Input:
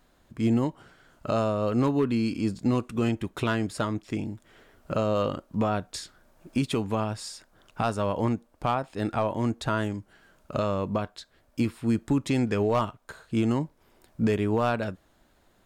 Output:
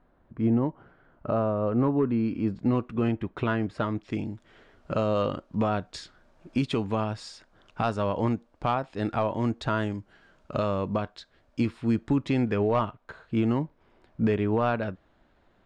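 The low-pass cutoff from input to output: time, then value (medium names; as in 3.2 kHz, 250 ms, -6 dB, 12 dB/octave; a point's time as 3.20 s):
2.03 s 1.4 kHz
2.71 s 2.3 kHz
3.69 s 2.3 kHz
4.20 s 4.9 kHz
11.76 s 4.9 kHz
12.54 s 3 kHz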